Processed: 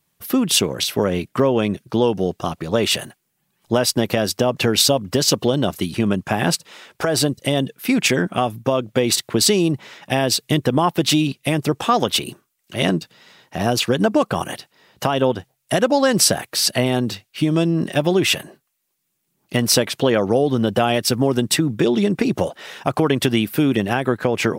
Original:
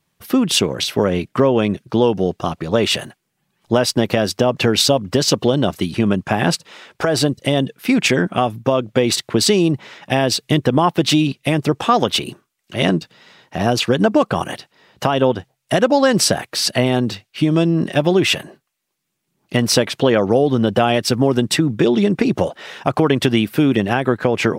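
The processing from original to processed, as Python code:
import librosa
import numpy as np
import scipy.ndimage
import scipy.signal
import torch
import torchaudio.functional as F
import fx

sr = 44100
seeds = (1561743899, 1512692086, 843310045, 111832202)

y = fx.high_shelf(x, sr, hz=8900.0, db=12.0)
y = y * 10.0 ** (-2.5 / 20.0)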